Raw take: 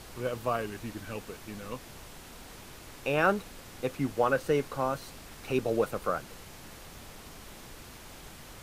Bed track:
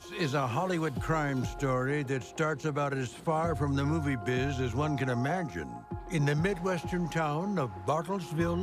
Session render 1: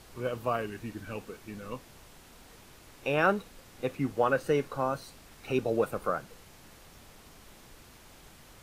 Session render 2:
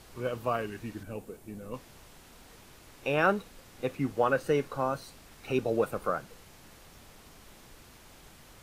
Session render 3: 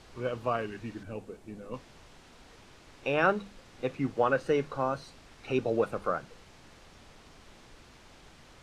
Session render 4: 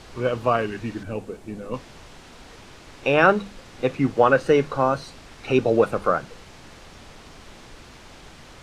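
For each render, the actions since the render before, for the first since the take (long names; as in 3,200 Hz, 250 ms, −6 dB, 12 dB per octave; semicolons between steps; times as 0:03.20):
noise reduction from a noise print 6 dB
0:01.03–0:01.74: flat-topped bell 2,500 Hz −8.5 dB 2.9 octaves
low-pass filter 6,200 Hz 12 dB per octave; mains-hum notches 50/100/150/200 Hz
level +9.5 dB; brickwall limiter −3 dBFS, peak gain reduction 1 dB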